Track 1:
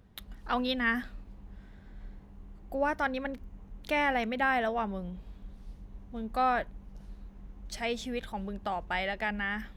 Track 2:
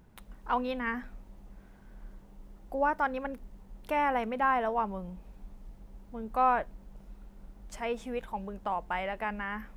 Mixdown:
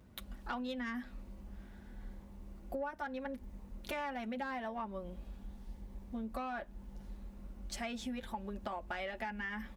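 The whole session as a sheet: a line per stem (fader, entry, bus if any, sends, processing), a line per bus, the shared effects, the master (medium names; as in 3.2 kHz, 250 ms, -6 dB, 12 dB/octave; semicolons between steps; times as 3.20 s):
-2.5 dB, 0.00 s, no send, saturation -22 dBFS, distortion -17 dB
-2.0 dB, 6.9 ms, polarity flipped, no send, comb 3.5 ms, depth 61%; Shepard-style phaser rising 0.81 Hz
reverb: none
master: high-pass 51 Hz 12 dB/octave; compression 8:1, threshold -37 dBFS, peak gain reduction 15.5 dB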